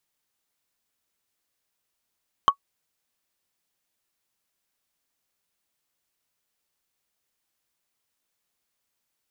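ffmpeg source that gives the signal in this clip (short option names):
-f lavfi -i "aevalsrc='0.447*pow(10,-3*t/0.08)*sin(2*PI*1120*t)+0.119*pow(10,-3*t/0.024)*sin(2*PI*3087.8*t)+0.0316*pow(10,-3*t/0.011)*sin(2*PI*6052.5*t)+0.00841*pow(10,-3*t/0.006)*sin(2*PI*10005*t)+0.00224*pow(10,-3*t/0.004)*sin(2*PI*14940.8*t)':d=0.45:s=44100"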